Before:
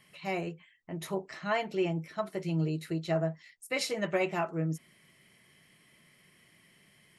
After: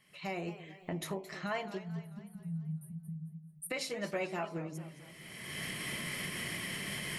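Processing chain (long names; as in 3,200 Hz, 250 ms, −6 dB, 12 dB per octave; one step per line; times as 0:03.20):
camcorder AGC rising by 31 dB per second
hum removal 53.44 Hz, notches 21
time-frequency box erased 0:01.78–0:03.70, 240–8,400 Hz
feedback echo with a swinging delay time 220 ms, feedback 51%, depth 152 cents, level −14 dB
level −6 dB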